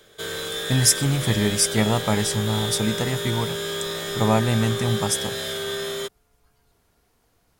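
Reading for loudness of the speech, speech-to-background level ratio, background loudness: -22.5 LUFS, 5.0 dB, -27.5 LUFS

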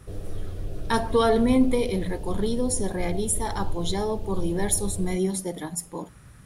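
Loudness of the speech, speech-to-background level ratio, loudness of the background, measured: -26.0 LUFS, 11.5 dB, -37.5 LUFS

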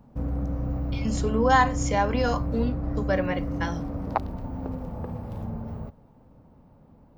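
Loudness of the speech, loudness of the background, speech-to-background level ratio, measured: -26.5 LUFS, -31.0 LUFS, 4.5 dB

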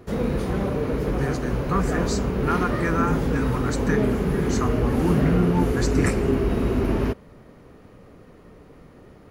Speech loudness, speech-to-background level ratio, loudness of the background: -27.5 LUFS, -3.5 dB, -24.0 LUFS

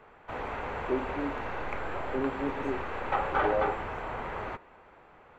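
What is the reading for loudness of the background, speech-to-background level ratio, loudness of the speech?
-34.0 LUFS, -1.0 dB, -35.0 LUFS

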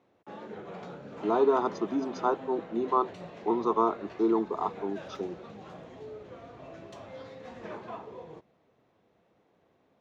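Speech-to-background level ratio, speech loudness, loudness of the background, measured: 14.5 dB, -29.5 LUFS, -44.0 LUFS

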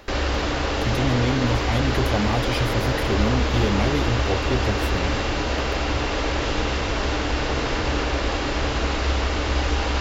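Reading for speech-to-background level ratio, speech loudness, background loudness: -2.0 dB, -26.0 LUFS, -24.0 LUFS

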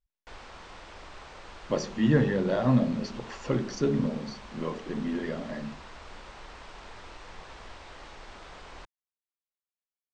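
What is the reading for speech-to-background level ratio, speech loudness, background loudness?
18.5 dB, -28.5 LUFS, -47.0 LUFS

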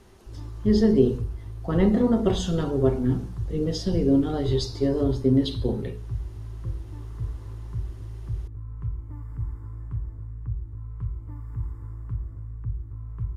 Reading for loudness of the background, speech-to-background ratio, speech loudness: -35.5 LUFS, 11.5 dB, -24.0 LUFS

